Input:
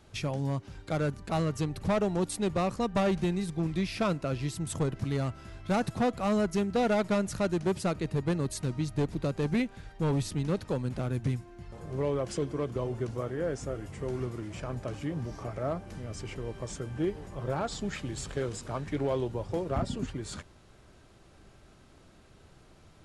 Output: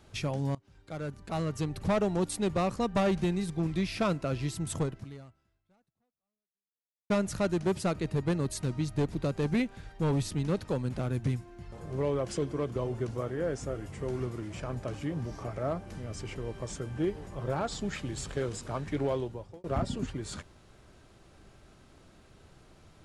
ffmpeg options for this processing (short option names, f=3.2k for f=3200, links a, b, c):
-filter_complex "[0:a]asplit=4[a][b][c][d];[a]atrim=end=0.55,asetpts=PTS-STARTPTS,afade=t=out:st=0.546:d=0.004:c=hsin:silence=0.0794328[e];[b]atrim=start=0.55:end=7.1,asetpts=PTS-STARTPTS,afade=t=in:d=1.27:silence=0.0794328,afade=t=out:st=4.25:d=2.3:c=exp[f];[c]atrim=start=7.1:end=19.64,asetpts=PTS-STARTPTS,afade=t=in:d=0.004:c=hsin,afade=t=out:st=11.97:d=0.57[g];[d]atrim=start=19.64,asetpts=PTS-STARTPTS,afade=t=in:d=0.004:c=hsin[h];[e][f][g][h]concat=n=4:v=0:a=1"